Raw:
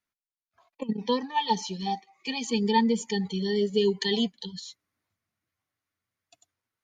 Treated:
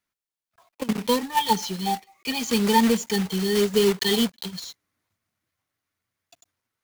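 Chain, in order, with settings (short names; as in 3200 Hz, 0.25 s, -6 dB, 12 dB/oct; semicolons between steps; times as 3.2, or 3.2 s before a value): block floating point 3-bit; gain +4 dB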